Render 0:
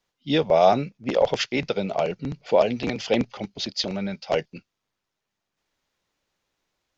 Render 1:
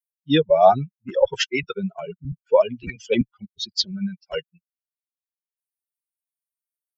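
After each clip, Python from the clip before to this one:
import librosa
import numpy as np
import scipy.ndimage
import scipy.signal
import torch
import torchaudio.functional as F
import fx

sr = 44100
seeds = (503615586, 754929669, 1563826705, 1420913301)

y = fx.bin_expand(x, sr, power=3.0)
y = y * librosa.db_to_amplitude(7.5)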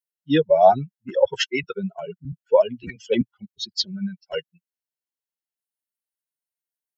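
y = fx.notch_comb(x, sr, f0_hz=1200.0)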